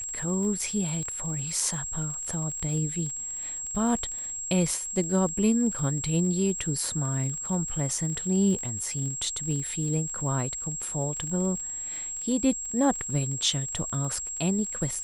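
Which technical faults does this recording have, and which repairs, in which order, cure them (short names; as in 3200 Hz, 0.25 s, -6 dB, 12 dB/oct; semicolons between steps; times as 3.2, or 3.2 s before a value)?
crackle 42/s -35 dBFS
tone 7600 Hz -32 dBFS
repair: de-click; notch 7600 Hz, Q 30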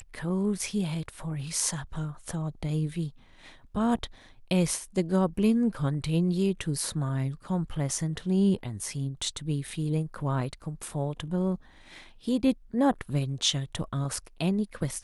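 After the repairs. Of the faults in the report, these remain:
none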